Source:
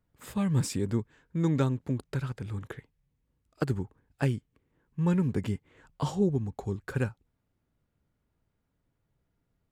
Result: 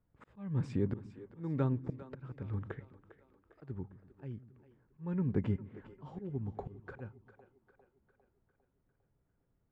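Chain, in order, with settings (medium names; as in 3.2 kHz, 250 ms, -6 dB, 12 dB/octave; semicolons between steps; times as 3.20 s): Bessel low-pass 1.5 kHz, order 2; slow attack 409 ms; two-band feedback delay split 300 Hz, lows 125 ms, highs 402 ms, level -14.5 dB; trim -1.5 dB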